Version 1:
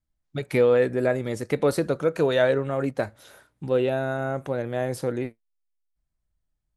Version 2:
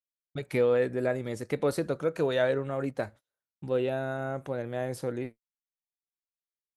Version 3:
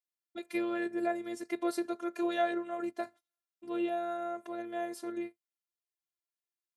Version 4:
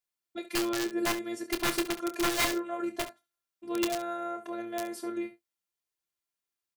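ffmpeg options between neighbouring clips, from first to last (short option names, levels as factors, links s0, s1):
-af "agate=range=0.0141:threshold=0.01:ratio=16:detection=peak,volume=0.531"
-af "afftfilt=real='hypot(re,im)*cos(PI*b)':imag='0':win_size=512:overlap=0.75,highpass=180"
-af "aeval=exprs='(mod(18.8*val(0)+1,2)-1)/18.8':c=same,aecho=1:1:27|69:0.335|0.2,volume=1.5"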